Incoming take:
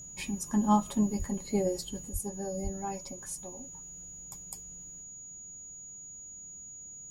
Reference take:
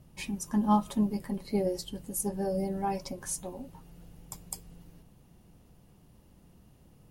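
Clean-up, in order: band-stop 6.8 kHz, Q 30; de-plosive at 1.18/2.12/2.63 s; trim 0 dB, from 2.09 s +5.5 dB

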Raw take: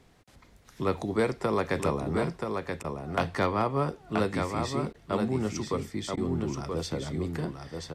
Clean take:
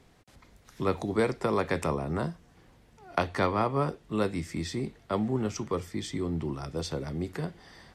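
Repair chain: clip repair -16.5 dBFS; interpolate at 2.83/4.93/6.16 s, 11 ms; inverse comb 979 ms -5 dB

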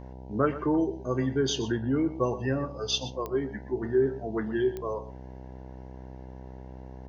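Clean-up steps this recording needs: de-click; de-hum 64.1 Hz, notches 15; inverse comb 122 ms -14.5 dB

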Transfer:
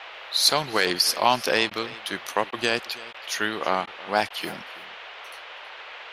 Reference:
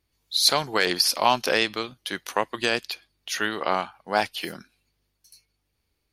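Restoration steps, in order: interpolate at 1.70/2.51/3.13/3.86/4.29 s, 11 ms; noise print and reduce 30 dB; inverse comb 325 ms -19.5 dB

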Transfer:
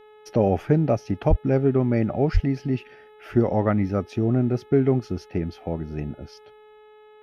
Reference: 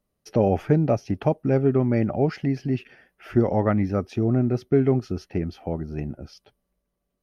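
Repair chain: de-hum 426.3 Hz, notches 9; 1.29–1.41 s: high-pass 140 Hz 24 dB/octave; 2.33–2.45 s: high-pass 140 Hz 24 dB/octave

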